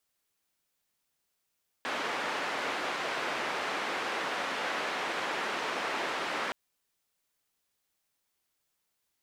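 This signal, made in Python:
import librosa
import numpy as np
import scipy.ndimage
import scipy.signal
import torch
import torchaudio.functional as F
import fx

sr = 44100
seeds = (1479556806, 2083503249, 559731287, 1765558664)

y = fx.band_noise(sr, seeds[0], length_s=4.67, low_hz=330.0, high_hz=1900.0, level_db=-33.5)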